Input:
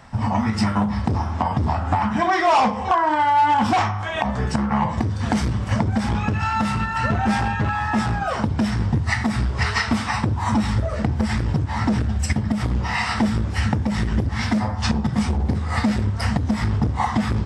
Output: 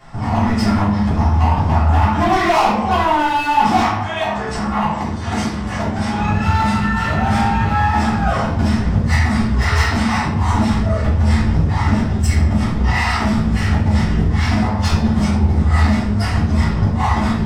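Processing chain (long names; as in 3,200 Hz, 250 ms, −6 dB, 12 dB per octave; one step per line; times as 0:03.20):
0:03.90–0:06.18: low-shelf EQ 260 Hz −10 dB
gain into a clipping stage and back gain 18 dB
rectangular room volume 150 cubic metres, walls mixed, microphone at 3.3 metres
level −6 dB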